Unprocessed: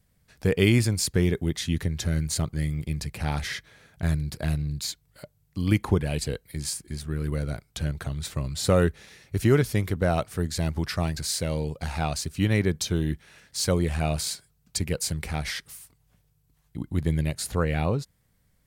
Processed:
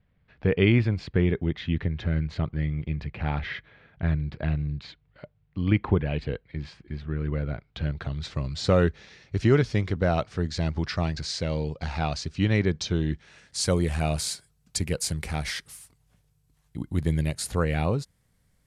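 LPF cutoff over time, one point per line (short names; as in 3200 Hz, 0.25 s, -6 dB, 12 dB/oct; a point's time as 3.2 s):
LPF 24 dB/oct
7.51 s 3100 Hz
8.38 s 5700 Hz
13.07 s 5700 Hz
13.76 s 12000 Hz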